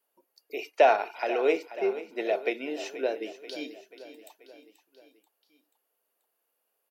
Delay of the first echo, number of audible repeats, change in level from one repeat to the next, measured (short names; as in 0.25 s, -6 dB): 0.484 s, 4, -5.0 dB